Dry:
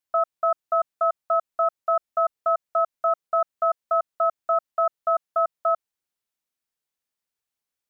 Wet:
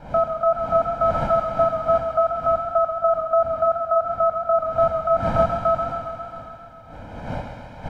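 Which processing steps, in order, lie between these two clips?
wind noise 560 Hz -37 dBFS; comb 1.3 ms, depth 88%; on a send: feedback echo behind a high-pass 81 ms, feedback 83%, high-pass 1.4 kHz, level -8 dB; on the sum: modulated delay 134 ms, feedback 71%, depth 52 cents, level -8.5 dB

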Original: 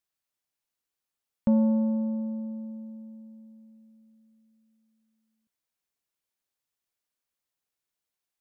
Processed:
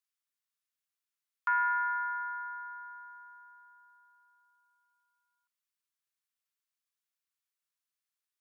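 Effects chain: saturation -15.5 dBFS, distortion -22 dB; ring modulator 1.2 kHz; steep high-pass 1 kHz 48 dB/octave; trim -1 dB

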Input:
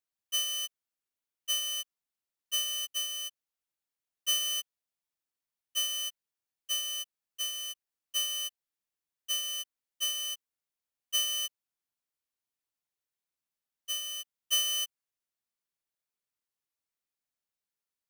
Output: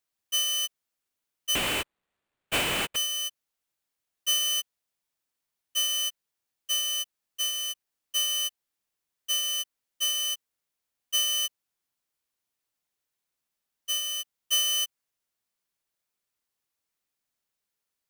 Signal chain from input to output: in parallel at +0.5 dB: peak limiter -29.5 dBFS, peak gain reduction 10.5 dB; 1.55–2.96 s: on the sum: sample-rate reducer 5.6 kHz, jitter 20%

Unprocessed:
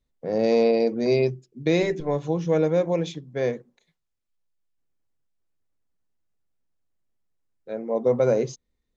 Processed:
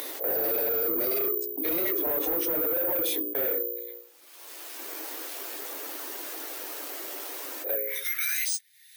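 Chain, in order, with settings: phase randomisation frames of 50 ms; gate -38 dBFS, range -31 dB; steep high-pass 290 Hz 72 dB/octave, from 7.74 s 1.6 kHz; hum notches 60/120/180/240/300/360/420/480/540 Hz; transient shaper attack -8 dB, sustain 0 dB; upward compressor, threshold -32 dBFS; peak limiter -25.5 dBFS, peak gain reduction 13.5 dB; saturation -34.5 dBFS, distortion -11 dB; careless resampling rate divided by 3×, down filtered, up zero stuff; level flattener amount 70%; trim +5 dB

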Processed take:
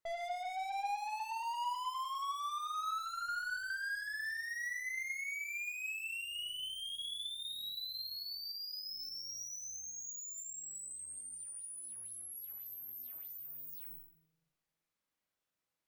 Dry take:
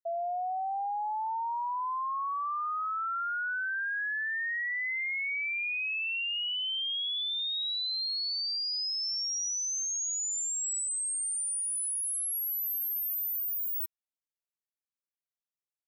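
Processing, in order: 0.87–3.24 s: peaking EQ 1 kHz +5.5 dB 0.54 oct; flutter echo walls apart 7.4 m, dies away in 0.42 s; valve stage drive 48 dB, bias 0.25; treble shelf 3.9 kHz -8.5 dB; simulated room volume 230 m³, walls mixed, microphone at 0.61 m; trim +9 dB

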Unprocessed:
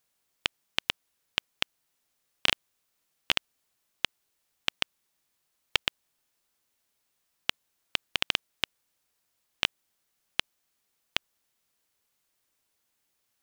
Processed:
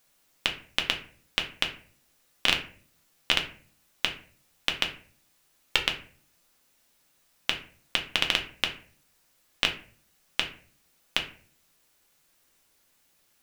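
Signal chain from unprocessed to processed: peak limiter -10.5 dBFS, peak gain reduction 7 dB; on a send: reverberation RT60 0.45 s, pre-delay 4 ms, DRR 2 dB; on the sum: trim +8.5 dB

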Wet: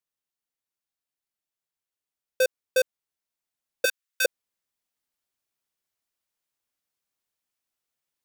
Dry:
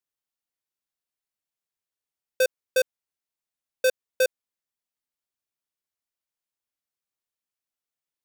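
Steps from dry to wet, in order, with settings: 3.85–4.25 s: high-pass 1.2 kHz 24 dB/octave; gain riding 2 s; trim +2.5 dB

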